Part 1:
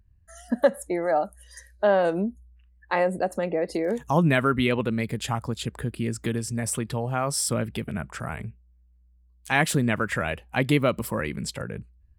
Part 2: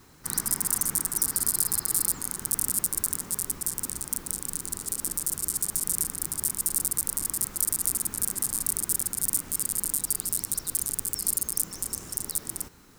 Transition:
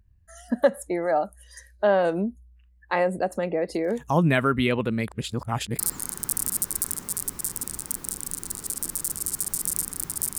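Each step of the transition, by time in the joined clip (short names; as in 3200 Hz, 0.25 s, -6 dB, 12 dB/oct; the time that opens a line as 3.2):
part 1
5.08–5.79 reverse
5.79 switch to part 2 from 2.01 s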